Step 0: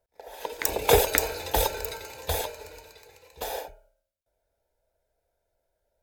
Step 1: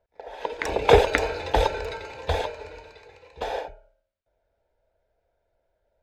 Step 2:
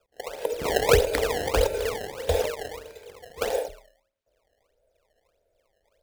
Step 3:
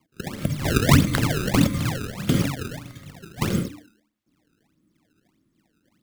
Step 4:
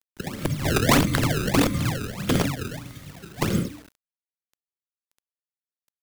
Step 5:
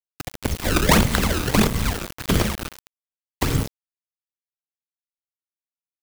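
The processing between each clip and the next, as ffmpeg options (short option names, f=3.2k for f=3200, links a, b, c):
-af "lowpass=3.1k,volume=4.5dB"
-filter_complex "[0:a]acrossover=split=190[a][b];[b]acompressor=threshold=-23dB:ratio=3[c];[a][c]amix=inputs=2:normalize=0,equalizer=f=500:t=o:w=1:g=10,equalizer=f=1k:t=o:w=1:g=-8,equalizer=f=8k:t=o:w=1:g=12,acrusher=samples=21:mix=1:aa=0.000001:lfo=1:lforange=33.6:lforate=1.6,volume=-1.5dB"
-af "afreqshift=-330,volume=3.5dB"
-filter_complex "[0:a]acrossover=split=200[a][b];[a]aeval=exprs='(mod(6.68*val(0)+1,2)-1)/6.68':c=same[c];[c][b]amix=inputs=2:normalize=0,aeval=exprs='val(0)+0.00158*(sin(2*PI*60*n/s)+sin(2*PI*2*60*n/s)/2+sin(2*PI*3*60*n/s)/3+sin(2*PI*4*60*n/s)/4+sin(2*PI*5*60*n/s)/5)':c=same,acrusher=bits=7:mix=0:aa=0.000001"
-af "aecho=1:1:194|388|582|776|970:0.1|0.058|0.0336|0.0195|0.0113,afreqshift=-70,aeval=exprs='val(0)*gte(abs(val(0)),0.0501)':c=same,volume=2.5dB"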